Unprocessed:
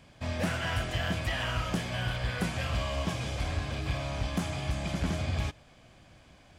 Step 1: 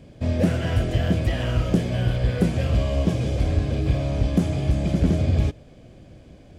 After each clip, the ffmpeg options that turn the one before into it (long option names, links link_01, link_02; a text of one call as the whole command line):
ffmpeg -i in.wav -af "lowshelf=frequency=670:width_type=q:width=1.5:gain=11" out.wav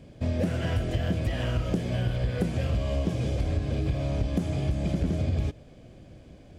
ffmpeg -i in.wav -af "acompressor=threshold=-20dB:ratio=6,volume=-2.5dB" out.wav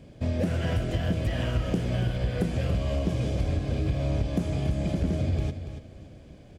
ffmpeg -i in.wav -af "aecho=1:1:284|568|852:0.316|0.0854|0.0231" out.wav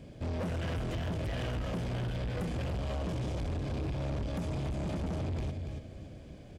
ffmpeg -i in.wav -af "asoftclip=type=tanh:threshold=-31.5dB" out.wav